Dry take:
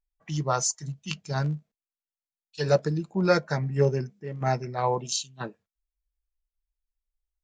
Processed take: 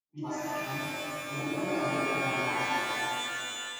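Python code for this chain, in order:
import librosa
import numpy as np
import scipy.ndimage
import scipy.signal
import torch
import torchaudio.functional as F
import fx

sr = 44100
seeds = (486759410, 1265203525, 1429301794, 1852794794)

y = fx.reverse_delay(x, sr, ms=652, wet_db=-10)
y = fx.vowel_filter(y, sr, vowel='u')
y = fx.high_shelf(y, sr, hz=4000.0, db=10.0)
y = fx.stretch_vocoder_free(y, sr, factor=0.51)
y = fx.env_lowpass(y, sr, base_hz=310.0, full_db=-45.0)
y = fx.rev_shimmer(y, sr, seeds[0], rt60_s=2.5, semitones=12, shimmer_db=-2, drr_db=-8.5)
y = y * librosa.db_to_amplitude(2.0)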